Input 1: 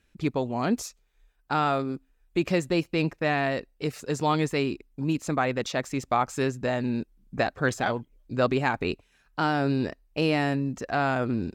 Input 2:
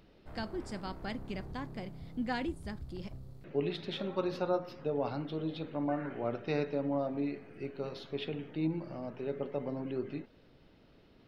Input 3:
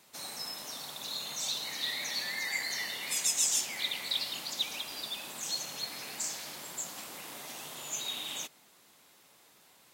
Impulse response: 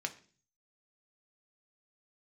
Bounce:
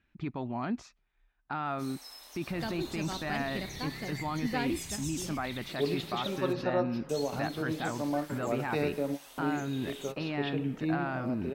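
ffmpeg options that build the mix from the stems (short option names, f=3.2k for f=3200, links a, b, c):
-filter_complex "[0:a]lowpass=2.6k,equalizer=f=480:w=3:g=-12.5,volume=-2dB,asplit=2[a][b];[1:a]adelay=2250,volume=2dB[c];[2:a]equalizer=f=150:w=0.8:g=-14,bandreject=f=7.1k:w=12,asoftclip=type=tanh:threshold=-18.5dB,adelay=1650,volume=-8.5dB,asplit=3[d][e][f];[d]atrim=end=6.53,asetpts=PTS-STARTPTS,afade=t=out:st=6.526:d=0.004:c=hsin[g];[e]atrim=start=6.53:end=7.09,asetpts=PTS-STARTPTS,volume=0[h];[f]atrim=start=7.09,asetpts=PTS-STARTPTS,afade=t=in:d=0.004:c=hsin[i];[g][h][i]concat=n=3:v=0:a=1[j];[b]apad=whole_len=596274[k];[c][k]sidechaingate=range=-33dB:threshold=-59dB:ratio=16:detection=peak[l];[a][j]amix=inputs=2:normalize=0,alimiter=level_in=1dB:limit=-24dB:level=0:latency=1:release=17,volume=-1dB,volume=0dB[m];[l][m]amix=inputs=2:normalize=0,lowshelf=f=61:g=-8.5"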